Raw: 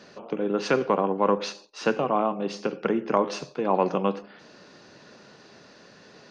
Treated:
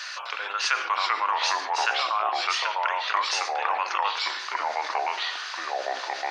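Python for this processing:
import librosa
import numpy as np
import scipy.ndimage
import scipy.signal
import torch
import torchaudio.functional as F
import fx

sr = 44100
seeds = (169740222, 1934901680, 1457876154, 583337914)

y = scipy.signal.sosfilt(scipy.signal.butter(4, 1200.0, 'highpass', fs=sr, output='sos'), x)
y = fx.echo_pitch(y, sr, ms=255, semitones=-3, count=2, db_per_echo=-3.0)
y = fx.env_flatten(y, sr, amount_pct=50)
y = y * librosa.db_to_amplitude(4.5)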